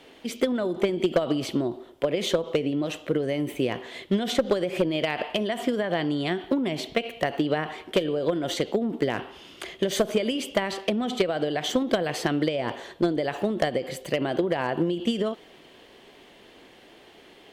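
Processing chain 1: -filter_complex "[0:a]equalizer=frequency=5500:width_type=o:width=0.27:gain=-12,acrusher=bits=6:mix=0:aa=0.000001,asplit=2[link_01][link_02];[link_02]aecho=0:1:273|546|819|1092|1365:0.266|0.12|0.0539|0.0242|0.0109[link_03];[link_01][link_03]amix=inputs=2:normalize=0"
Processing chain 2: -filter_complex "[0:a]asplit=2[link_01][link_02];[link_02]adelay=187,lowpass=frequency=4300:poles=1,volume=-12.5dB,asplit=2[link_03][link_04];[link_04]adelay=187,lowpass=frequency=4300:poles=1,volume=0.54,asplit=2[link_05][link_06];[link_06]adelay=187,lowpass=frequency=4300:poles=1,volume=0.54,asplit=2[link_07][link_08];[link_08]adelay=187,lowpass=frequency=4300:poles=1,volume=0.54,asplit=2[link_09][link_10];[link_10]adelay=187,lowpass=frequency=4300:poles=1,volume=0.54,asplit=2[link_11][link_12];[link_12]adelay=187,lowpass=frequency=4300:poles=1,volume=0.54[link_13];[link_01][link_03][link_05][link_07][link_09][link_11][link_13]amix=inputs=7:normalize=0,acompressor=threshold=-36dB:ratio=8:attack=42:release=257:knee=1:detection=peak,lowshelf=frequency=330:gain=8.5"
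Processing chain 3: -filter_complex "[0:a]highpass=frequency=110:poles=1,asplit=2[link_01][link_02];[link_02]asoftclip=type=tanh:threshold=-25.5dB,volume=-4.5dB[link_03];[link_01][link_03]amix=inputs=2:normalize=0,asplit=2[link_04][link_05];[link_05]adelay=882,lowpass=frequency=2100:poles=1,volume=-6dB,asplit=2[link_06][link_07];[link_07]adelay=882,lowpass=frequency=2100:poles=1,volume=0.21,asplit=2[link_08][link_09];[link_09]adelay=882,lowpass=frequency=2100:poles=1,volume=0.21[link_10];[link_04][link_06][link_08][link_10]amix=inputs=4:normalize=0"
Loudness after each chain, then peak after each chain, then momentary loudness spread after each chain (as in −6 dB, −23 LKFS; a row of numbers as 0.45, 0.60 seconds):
−26.5, −33.5, −24.0 LKFS; −11.5, −13.0, −9.0 dBFS; 5, 5, 8 LU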